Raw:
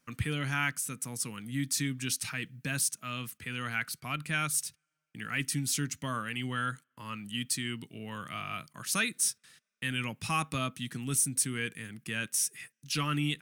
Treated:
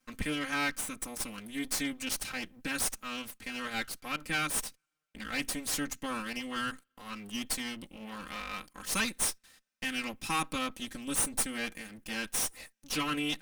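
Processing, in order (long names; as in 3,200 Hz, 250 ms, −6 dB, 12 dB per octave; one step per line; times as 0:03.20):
lower of the sound and its delayed copy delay 3.8 ms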